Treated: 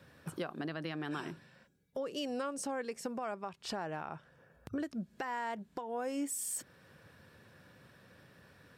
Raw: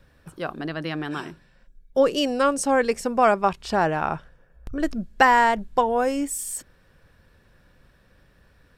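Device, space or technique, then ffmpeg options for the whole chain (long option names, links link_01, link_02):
podcast mastering chain: -af "highpass=frequency=97:width=0.5412,highpass=frequency=97:width=1.3066,deesser=0.45,acompressor=threshold=-32dB:ratio=4,alimiter=level_in=4.5dB:limit=-24dB:level=0:latency=1:release=390,volume=-4.5dB,volume=1dB" -ar 48000 -c:a libmp3lame -b:a 96k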